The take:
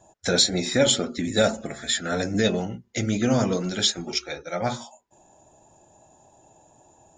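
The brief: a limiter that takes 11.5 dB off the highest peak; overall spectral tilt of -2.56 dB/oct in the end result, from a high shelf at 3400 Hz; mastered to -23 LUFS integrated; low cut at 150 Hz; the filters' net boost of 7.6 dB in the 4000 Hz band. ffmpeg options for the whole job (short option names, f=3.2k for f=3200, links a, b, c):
-af "highpass=150,highshelf=f=3.4k:g=6.5,equalizer=f=4k:t=o:g=4.5,alimiter=limit=-10dB:level=0:latency=1"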